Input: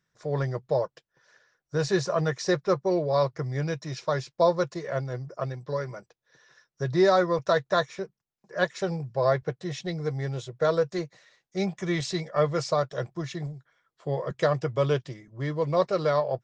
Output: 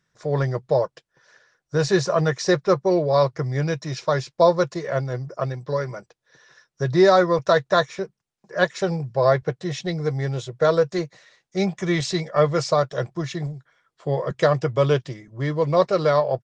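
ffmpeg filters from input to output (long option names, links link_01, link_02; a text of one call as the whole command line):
ffmpeg -i in.wav -af "aresample=22050,aresample=44100,volume=5.5dB" out.wav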